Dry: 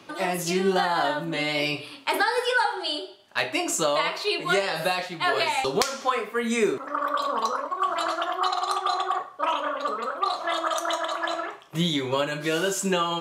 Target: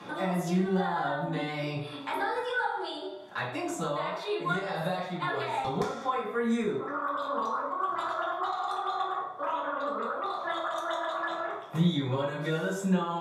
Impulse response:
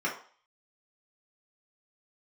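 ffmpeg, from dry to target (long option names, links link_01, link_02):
-filter_complex "[0:a]acrossover=split=130[link_01][link_02];[link_02]acompressor=threshold=-42dB:ratio=3[link_03];[link_01][link_03]amix=inputs=2:normalize=0[link_04];[1:a]atrim=start_sample=2205,asetrate=28224,aresample=44100[link_05];[link_04][link_05]afir=irnorm=-1:irlink=0,volume=-3.5dB"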